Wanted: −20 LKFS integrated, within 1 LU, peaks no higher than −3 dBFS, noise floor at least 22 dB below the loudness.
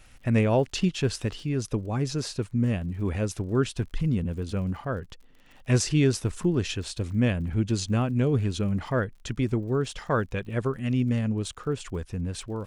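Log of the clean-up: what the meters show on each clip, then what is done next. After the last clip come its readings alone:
crackle rate 48 per second; integrated loudness −27.5 LKFS; sample peak −12.0 dBFS; target loudness −20.0 LKFS
→ click removal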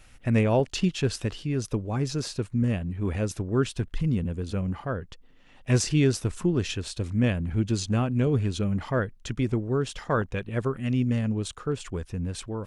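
crackle rate 0 per second; integrated loudness −27.5 LKFS; sample peak −12.0 dBFS; target loudness −20.0 LKFS
→ level +7.5 dB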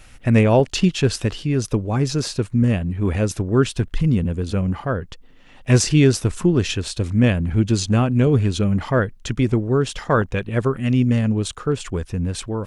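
integrated loudness −20.0 LKFS; sample peak −4.5 dBFS; background noise floor −46 dBFS

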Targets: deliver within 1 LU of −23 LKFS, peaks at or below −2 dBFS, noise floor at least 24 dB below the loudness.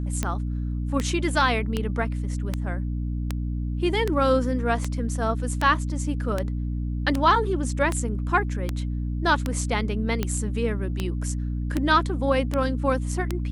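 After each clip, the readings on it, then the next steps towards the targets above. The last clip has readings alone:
number of clicks 18; mains hum 60 Hz; hum harmonics up to 300 Hz; level of the hum −25 dBFS; integrated loudness −25.5 LKFS; sample peak −7.0 dBFS; target loudness −23.0 LKFS
→ click removal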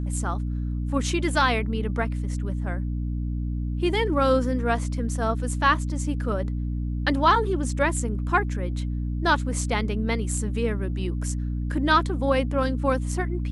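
number of clicks 0; mains hum 60 Hz; hum harmonics up to 300 Hz; level of the hum −25 dBFS
→ mains-hum notches 60/120/180/240/300 Hz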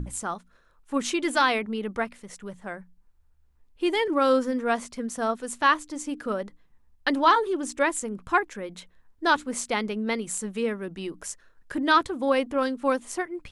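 mains hum none found; integrated loudness −26.0 LKFS; sample peak −7.0 dBFS; target loudness −23.0 LKFS
→ level +3 dB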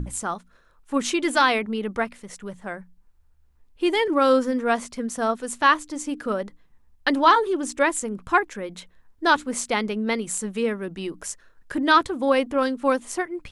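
integrated loudness −23.0 LKFS; sample peak −4.0 dBFS; background noise floor −58 dBFS

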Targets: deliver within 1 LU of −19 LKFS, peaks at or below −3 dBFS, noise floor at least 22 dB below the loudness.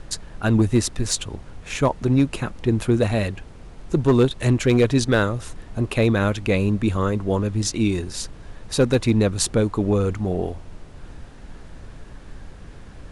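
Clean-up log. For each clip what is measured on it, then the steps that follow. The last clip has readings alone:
share of clipped samples 0.7%; peaks flattened at −10.0 dBFS; background noise floor −42 dBFS; target noise floor −44 dBFS; integrated loudness −21.5 LKFS; sample peak −10.0 dBFS; target loudness −19.0 LKFS
→ clipped peaks rebuilt −10 dBFS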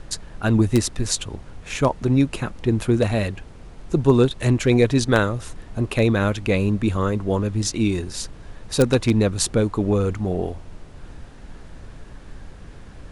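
share of clipped samples 0.0%; background noise floor −42 dBFS; target noise floor −44 dBFS
→ noise reduction from a noise print 6 dB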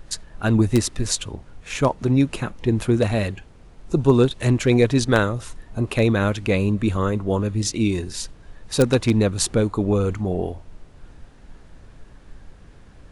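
background noise floor −47 dBFS; integrated loudness −21.0 LKFS; sample peak −1.0 dBFS; target loudness −19.0 LKFS
→ level +2 dB
brickwall limiter −3 dBFS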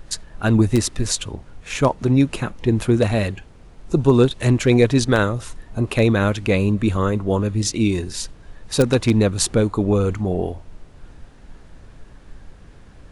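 integrated loudness −19.5 LKFS; sample peak −3.0 dBFS; background noise floor −45 dBFS

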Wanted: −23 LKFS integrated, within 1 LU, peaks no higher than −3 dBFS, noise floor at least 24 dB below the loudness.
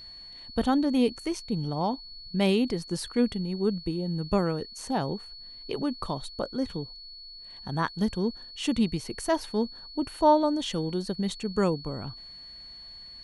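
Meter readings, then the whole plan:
interfering tone 4,400 Hz; level of the tone −43 dBFS; integrated loudness −29.0 LKFS; sample peak −10.5 dBFS; target loudness −23.0 LKFS
→ notch filter 4,400 Hz, Q 30
level +6 dB

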